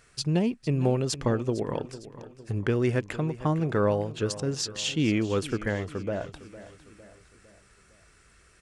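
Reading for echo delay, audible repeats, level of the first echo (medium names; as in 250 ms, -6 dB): 456 ms, 4, -16.0 dB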